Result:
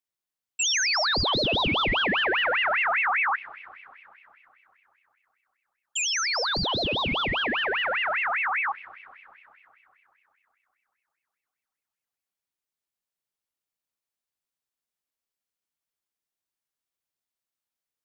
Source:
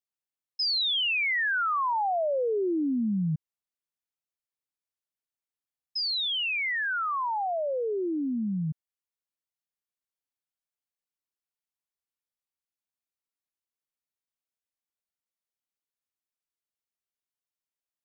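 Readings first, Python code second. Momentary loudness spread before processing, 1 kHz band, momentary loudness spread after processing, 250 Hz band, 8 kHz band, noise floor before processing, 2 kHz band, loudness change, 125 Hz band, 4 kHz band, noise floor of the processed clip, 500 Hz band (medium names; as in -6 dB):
8 LU, +2.5 dB, 6 LU, -5.0 dB, no reading, under -85 dBFS, +5.5 dB, +3.5 dB, -1.0 dB, +3.5 dB, under -85 dBFS, -1.0 dB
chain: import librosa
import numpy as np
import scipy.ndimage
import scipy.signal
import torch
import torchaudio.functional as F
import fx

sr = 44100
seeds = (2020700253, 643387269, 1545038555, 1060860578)

y = fx.rev_spring(x, sr, rt60_s=3.5, pass_ms=(32,), chirp_ms=60, drr_db=17.0)
y = fx.ring_lfo(y, sr, carrier_hz=1700.0, swing_pct=45, hz=5.0)
y = y * 10.0 ** (5.5 / 20.0)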